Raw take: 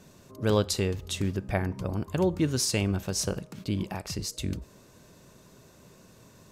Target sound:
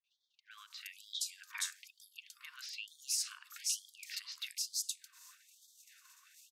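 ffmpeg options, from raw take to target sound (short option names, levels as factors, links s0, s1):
-filter_complex "[0:a]agate=range=0.2:threshold=0.00251:ratio=16:detection=peak,acompressor=threshold=0.01:ratio=6,acrossover=split=1200|4000[s0][s1][s2];[s1]adelay=40[s3];[s2]adelay=510[s4];[s0][s3][s4]amix=inputs=3:normalize=0,dynaudnorm=f=300:g=5:m=3.55,afftfilt=real='re*gte(b*sr/1024,920*pow(3200/920,0.5+0.5*sin(2*PI*1.1*pts/sr)))':imag='im*gte(b*sr/1024,920*pow(3200/920,0.5+0.5*sin(2*PI*1.1*pts/sr)))':win_size=1024:overlap=0.75,volume=0.841"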